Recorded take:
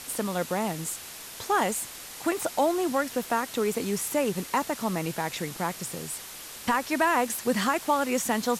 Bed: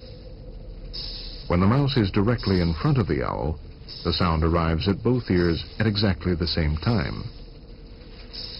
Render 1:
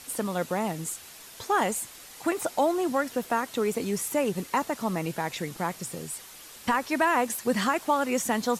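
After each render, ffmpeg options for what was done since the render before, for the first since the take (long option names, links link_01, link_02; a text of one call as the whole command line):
ffmpeg -i in.wav -af "afftdn=noise_reduction=6:noise_floor=-42" out.wav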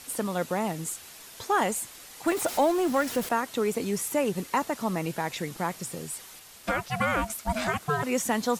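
ffmpeg -i in.wav -filter_complex "[0:a]asettb=1/sr,asplit=3[link_01][link_02][link_03];[link_01]atrim=end=2.274[link_04];[link_02]atrim=start=2.27:end=3.29,asetpts=PTS-STARTPTS,afade=type=in:duration=0.004:curve=qsin,afade=type=out:start_time=1.016:duration=0.004:curve=qsin,aeval=exprs='val(0)+0.5*0.0224*sgn(val(0))':channel_layout=same[link_05];[link_03]atrim=start=3.286[link_06];[link_04][link_05]acrossfade=duration=0.004:curve1=hsin:curve2=qsin[link_07];[link_07][link_06]acrossfade=duration=0.004:curve1=qsin:curve2=hsin,asplit=3[link_08][link_09][link_10];[link_08]afade=type=out:start_time=6.39:duration=0.02[link_11];[link_09]aeval=exprs='val(0)*sin(2*PI*440*n/s)':channel_layout=same,afade=type=in:start_time=6.39:duration=0.02,afade=type=out:start_time=8.02:duration=0.02[link_12];[link_10]afade=type=in:start_time=8.02:duration=0.02[link_13];[link_11][link_12][link_13]amix=inputs=3:normalize=0" out.wav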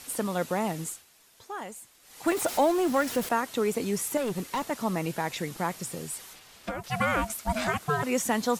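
ffmpeg -i in.wav -filter_complex "[0:a]asettb=1/sr,asplit=3[link_01][link_02][link_03];[link_01]atrim=end=4.174[link_04];[link_02]atrim=start=4.17:end=4.71,asetpts=PTS-STARTPTS,afade=type=in:duration=0.004:curve=qsin,afade=type=out:start_time=0.536:duration=0.004:curve=qsin,volume=26dB,asoftclip=hard,volume=-26dB[link_05];[link_03]atrim=start=4.706[link_06];[link_04][link_05]acrossfade=duration=0.004:curve1=hsin:curve2=qsin[link_07];[link_07][link_06]acrossfade=duration=0.004:curve1=qsin:curve2=hsin,asettb=1/sr,asplit=3[link_08][link_09][link_10];[link_08]atrim=end=6.334[link_11];[link_09]atrim=start=6.33:end=6.84,asetpts=PTS-STARTPTS,afade=type=in:duration=0.004:curve=qsin,afade=type=out:start_time=0.506:duration=0.004:curve=qsin,acrossover=split=890|5700[link_12][link_13][link_14];[link_12]acompressor=threshold=-32dB:ratio=4[link_15];[link_13]acompressor=threshold=-42dB:ratio=4[link_16];[link_14]acompressor=threshold=-58dB:ratio=4[link_17];[link_15][link_16][link_17]amix=inputs=3:normalize=0[link_18];[link_10]atrim=start=6.836[link_19];[link_11][link_18]acrossfade=duration=0.004:curve1=hsin:curve2=qsin[link_20];[link_20][link_19]acrossfade=duration=0.004:curve1=qsin:curve2=hsin,asplit=3[link_21][link_22][link_23];[link_21]atrim=end=1.05,asetpts=PTS-STARTPTS,afade=type=out:start_time=0.82:duration=0.23:silence=0.223872[link_24];[link_22]atrim=start=1.05:end=2.02,asetpts=PTS-STARTPTS,volume=-13dB[link_25];[link_23]atrim=start=2.02,asetpts=PTS-STARTPTS,afade=type=in:duration=0.23:silence=0.223872[link_26];[link_24][link_25][link_26]concat=n=3:v=0:a=1" out.wav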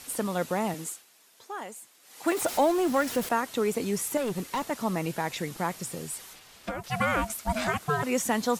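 ffmpeg -i in.wav -filter_complex "[0:a]asettb=1/sr,asplit=3[link_01][link_02][link_03];[link_01]atrim=end=0.744[link_04];[link_02]atrim=start=0.74:end=2.4,asetpts=PTS-STARTPTS,afade=type=in:duration=0.004:curve=qsin,afade=type=out:start_time=1.656:duration=0.004:curve=qsin,highpass=210[link_05];[link_03]atrim=start=2.396[link_06];[link_04][link_05]acrossfade=duration=0.004:curve1=hsin:curve2=qsin[link_07];[link_07][link_06]acrossfade=duration=0.004:curve1=qsin:curve2=hsin" out.wav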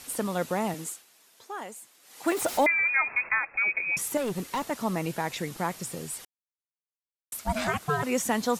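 ffmpeg -i in.wav -filter_complex "[0:a]asettb=1/sr,asplit=3[link_01][link_02][link_03];[link_01]atrim=end=2.664[link_04];[link_02]atrim=start=2.66:end=3.97,asetpts=PTS-STARTPTS,afade=type=in:duration=0.004:curve=qsin,afade=type=out:start_time=1.306:duration=0.004:curve=qsin,lowpass=frequency=2300:width_type=q:width=0.5098,lowpass=frequency=2300:width_type=q:width=0.6013,lowpass=frequency=2300:width_type=q:width=0.9,lowpass=frequency=2300:width_type=q:width=2.563,afreqshift=-2700[link_05];[link_03]atrim=start=3.966[link_06];[link_04][link_05]acrossfade=duration=0.004:curve1=hsin:curve2=qsin[link_07];[link_07][link_06]acrossfade=duration=0.004:curve1=qsin:curve2=hsin,asplit=3[link_08][link_09][link_10];[link_08]atrim=end=6.25,asetpts=PTS-STARTPTS,afade=type=out:start_time=6.246:duration=0.004:curve=hsin[link_11];[link_09]atrim=start=6.25:end=7.32,asetpts=PTS-STARTPTS,volume=0[link_12];[link_10]atrim=start=7.32,asetpts=PTS-STARTPTS,afade=type=in:duration=0.004:curve=hsin[link_13];[link_11][link_12][link_13]concat=n=3:v=0:a=1" out.wav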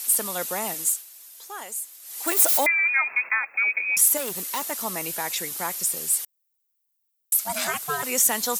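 ffmpeg -i in.wav -af "highpass=100,aemphasis=mode=production:type=riaa" out.wav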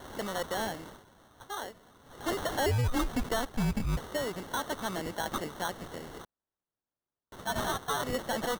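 ffmpeg -i in.wav -af "aresample=11025,asoftclip=type=tanh:threshold=-24.5dB,aresample=44100,acrusher=samples=18:mix=1:aa=0.000001" out.wav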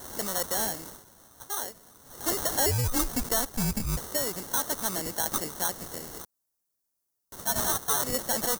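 ffmpeg -i in.wav -af "aexciter=amount=3.5:drive=7.5:freq=4700" out.wav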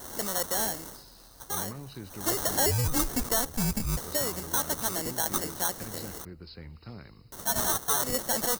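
ffmpeg -i in.wav -i bed.wav -filter_complex "[1:a]volume=-21.5dB[link_01];[0:a][link_01]amix=inputs=2:normalize=0" out.wav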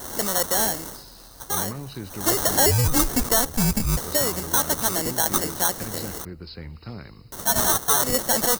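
ffmpeg -i in.wav -af "volume=7dB" out.wav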